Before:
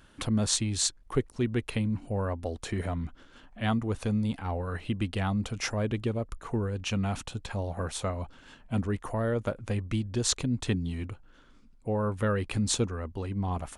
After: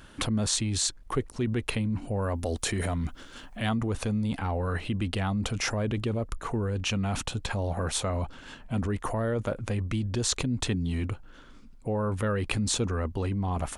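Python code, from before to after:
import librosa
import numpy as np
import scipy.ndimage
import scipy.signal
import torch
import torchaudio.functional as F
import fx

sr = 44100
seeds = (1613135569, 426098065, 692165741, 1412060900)

p1 = fx.high_shelf(x, sr, hz=4800.0, db=11.0, at=(2.22, 3.69))
p2 = fx.over_compress(p1, sr, threshold_db=-35.0, ratio=-1.0)
p3 = p1 + F.gain(torch.from_numpy(p2), 1.0).numpy()
y = F.gain(torch.from_numpy(p3), -2.5).numpy()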